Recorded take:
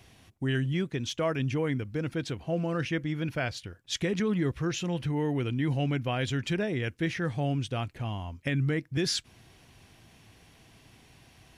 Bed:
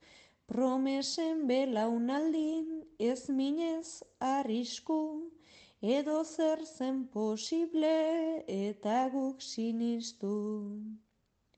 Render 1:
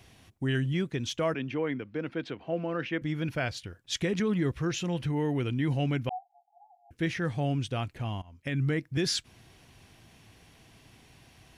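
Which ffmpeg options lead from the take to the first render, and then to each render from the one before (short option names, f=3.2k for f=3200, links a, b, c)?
-filter_complex "[0:a]asettb=1/sr,asplit=3[a][b][c];[a]atrim=end=1.344[d];[b]atrim=start=1.34:end=3.02,asetpts=PTS-STARTPTS,afade=t=in:d=0.004:c=qsin,afade=t=out:st=1.676:d=0.004:c=qsin,acrossover=split=190 3900:gain=0.158 1 0.0794[e][f][g];[e][f][g]amix=inputs=3:normalize=0[h];[c]atrim=start=3.016[i];[d][h]acrossfade=d=0.004:c1=hsin:c2=qsin[j];[j][i]acrossfade=d=0.004:c1=qsin:c2=hsin,asettb=1/sr,asplit=3[k][l][m];[k]atrim=end=6.094[n];[l]atrim=start=6.09:end=6.91,asetpts=PTS-STARTPTS,afade=t=in:d=0.004:c=qsin,afade=t=out:st=0.816:d=0.004:c=qsin,asuperpass=centerf=770:order=20:qfactor=5[o];[m]atrim=start=6.906[p];[n][o]acrossfade=d=0.004:c1=hsin:c2=qsin[q];[q][p]acrossfade=d=0.004:c1=qsin:c2=hsin,asplit=2[r][s];[r]atrim=end=8.22,asetpts=PTS-STARTPTS,afade=t=out:st=8.216:d=0.004:c=hsin:silence=0.0944061[t];[s]atrim=start=8.22,asetpts=PTS-STARTPTS,afade=t=in:d=0.43:silence=0.0944061[u];[t][u]concat=n=2:v=0:a=1"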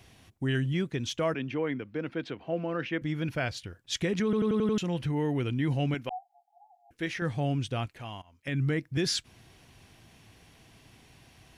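-filter_complex "[0:a]asettb=1/sr,asplit=3[a][b][c];[a]atrim=end=5.944[d];[b]atrim=start=5.94:end=7.22,asetpts=PTS-STARTPTS,afade=t=in:d=0.004:c=qsin,afade=t=out:st=1.276:d=0.004:c=qsin,equalizer=f=89:w=0.53:g=-12.5[e];[c]atrim=start=7.216[f];[d][e]acrossfade=d=0.004:c1=hsin:c2=qsin[g];[g][f]acrossfade=d=0.004:c1=qsin:c2=hsin,asettb=1/sr,asplit=3[h][i][j];[h]atrim=end=7.864[k];[i]atrim=start=7.86:end=8.48,asetpts=PTS-STARTPTS,afade=t=in:d=0.004:c=qsin,afade=t=out:st=0.616:d=0.004:c=qsin,lowshelf=f=390:g=-11[l];[j]atrim=start=8.476[m];[k][l]acrossfade=d=0.004:c1=hsin:c2=qsin[n];[n][m]acrossfade=d=0.004:c1=qsin:c2=hsin,asplit=7[o][p][q][r][s][t][u];[o]atrim=end=4.332[v];[p]atrim=start=4.238:end=4.332[w];[q]atrim=start=4.238:end=4.332[x];[r]atrim=start=4.238:end=4.332[y];[s]atrim=start=4.238:end=4.332[z];[t]atrim=start=4.238:end=4.332[aa];[u]atrim=start=4.778[ab];[v][w]acrossfade=d=0.004:c1=hsin:c2=hsin[ac];[ac][x]acrossfade=d=0.004:c1=hsin:c2=hsin[ad];[ad][y]acrossfade=d=0.004:c1=hsin:c2=hsin[ae];[ae][z]acrossfade=d=0.004:c1=hsin:c2=hsin[af];[af][aa]acrossfade=d=0.004:c1=hsin:c2=hsin[ag];[ag][ab]acrossfade=d=0.004:c1=hsin:c2=hsin"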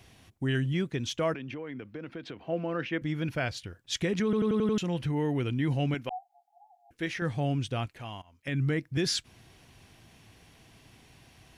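-filter_complex "[0:a]asettb=1/sr,asplit=3[a][b][c];[a]atrim=end=1.344[d];[b]atrim=start=1.34:end=2.41,asetpts=PTS-STARTPTS,afade=t=in:d=0.004:c=qsin,afade=t=out:st=1.066:d=0.004:c=qsin,acompressor=threshold=-35dB:ratio=6:attack=3.2:release=140:knee=1:detection=peak[e];[c]atrim=start=2.406[f];[d][e]acrossfade=d=0.004:c1=hsin:c2=qsin[g];[g][f]acrossfade=d=0.004:c1=qsin:c2=hsin"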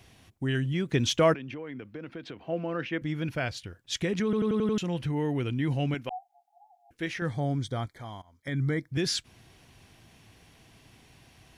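-filter_complex "[0:a]asplit=3[a][b][c];[a]afade=t=out:st=0.88:d=0.02[d];[b]acontrast=84,afade=t=in:st=0.88:d=0.02,afade=t=out:st=1.33:d=0.02[e];[c]afade=t=in:st=1.33:d=0.02[f];[d][e][f]amix=inputs=3:normalize=0,asettb=1/sr,asplit=3[g][h][i];[g]atrim=end=7.304[j];[h]atrim=start=7.3:end=8.89,asetpts=PTS-STARTPTS,afade=t=in:d=0.004:c=qsin,afade=t=out:st=1.586:d=0.004:c=qsin,asuperstop=centerf=2700:order=8:qfactor=3.4[k];[i]atrim=start=8.886[l];[j][k]acrossfade=d=0.004:c1=hsin:c2=qsin[m];[m][l]acrossfade=d=0.004:c1=qsin:c2=hsin"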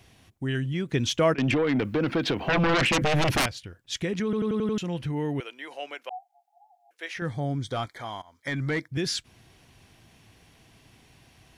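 -filter_complex "[0:a]asettb=1/sr,asplit=3[a][b][c];[a]atrim=end=1.384[d];[b]atrim=start=1.38:end=3.46,asetpts=PTS-STARTPTS,afade=t=in:d=0.004:c=qsin,afade=t=out:st=2.076:d=0.004:c=qsin,aeval=exprs='0.112*sin(PI/2*5.01*val(0)/0.112)':c=same[e];[c]atrim=start=3.456[f];[d][e]acrossfade=d=0.004:c1=hsin:c2=qsin[g];[g][f]acrossfade=d=0.004:c1=qsin:c2=hsin,asettb=1/sr,asplit=3[h][i][j];[h]atrim=end=5.404[k];[i]atrim=start=5.4:end=7.17,asetpts=PTS-STARTPTS,afade=t=in:d=0.004:c=qsin,afade=t=out:st=1.766:d=0.004:c=qsin,highpass=f=500:w=0.5412,highpass=f=500:w=1.3066[l];[j]atrim=start=7.166[m];[k][l]acrossfade=d=0.004:c1=hsin:c2=qsin[n];[n][m]acrossfade=d=0.004:c1=qsin:c2=hsin,asettb=1/sr,asplit=3[o][p][q];[o]atrim=end=7.684[r];[p]atrim=start=7.68:end=8.88,asetpts=PTS-STARTPTS,afade=t=in:d=0.004:c=qsin,afade=t=out:st=1.196:d=0.004:c=qsin,asplit=2[s][t];[t]highpass=f=720:p=1,volume=15dB,asoftclip=type=tanh:threshold=-18.5dB[u];[s][u]amix=inputs=2:normalize=0,lowpass=f=6k:p=1,volume=-6dB[v];[q]atrim=start=8.876[w];[r][v]acrossfade=d=0.004:c1=hsin:c2=qsin[x];[x][w]acrossfade=d=0.004:c1=qsin:c2=hsin"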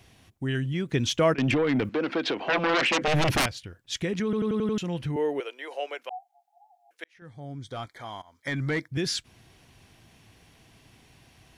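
-filter_complex "[0:a]asettb=1/sr,asplit=3[a][b][c];[a]atrim=end=1.894[d];[b]atrim=start=1.89:end=3.08,asetpts=PTS-STARTPTS,afade=t=in:d=0.004:c=qsin,afade=t=out:st=1.186:d=0.004:c=qsin,acrossover=split=240 7800:gain=0.0794 1 0.0891[e][f][g];[e][f][g]amix=inputs=3:normalize=0[h];[c]atrim=start=3.076[i];[d][h]acrossfade=d=0.004:c1=hsin:c2=qsin[j];[j][i]acrossfade=d=0.004:c1=qsin:c2=hsin,asettb=1/sr,asplit=3[k][l][m];[k]atrim=end=5.164[n];[l]atrim=start=5.16:end=5.99,asetpts=PTS-STARTPTS,afade=t=in:d=0.004:c=qsin,afade=t=out:st=0.826:d=0.004:c=qsin,highpass=f=450:t=q:w=2.2[o];[m]atrim=start=5.986[p];[n][o]acrossfade=d=0.004:c1=hsin:c2=qsin[q];[q][p]acrossfade=d=0.004:c1=qsin:c2=hsin,asplit=2[r][s];[r]atrim=end=7.04,asetpts=PTS-STARTPTS,afade=t=out:st=7.036:d=0.004:c=hsin[t];[s]atrim=start=7.04,asetpts=PTS-STARTPTS,afade=t=in:d=1.44[u];[t][u]concat=n=2:v=0:a=1"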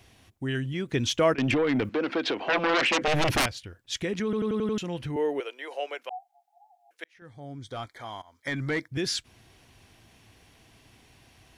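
-af "equalizer=f=160:t=o:w=0.59:g=-5"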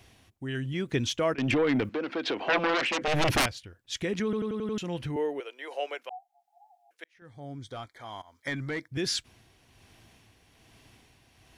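-af "tremolo=f=1.2:d=0.44"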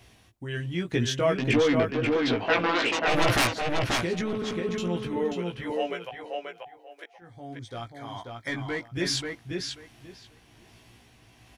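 -filter_complex "[0:a]asplit=2[a][b];[b]adelay=17,volume=-3.5dB[c];[a][c]amix=inputs=2:normalize=0,asplit=2[d][e];[e]adelay=536,lowpass=f=4.3k:p=1,volume=-3dB,asplit=2[f][g];[g]adelay=536,lowpass=f=4.3k:p=1,volume=0.19,asplit=2[h][i];[i]adelay=536,lowpass=f=4.3k:p=1,volume=0.19[j];[d][f][h][j]amix=inputs=4:normalize=0"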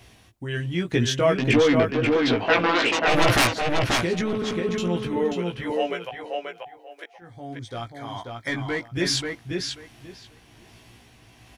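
-af "volume=4dB"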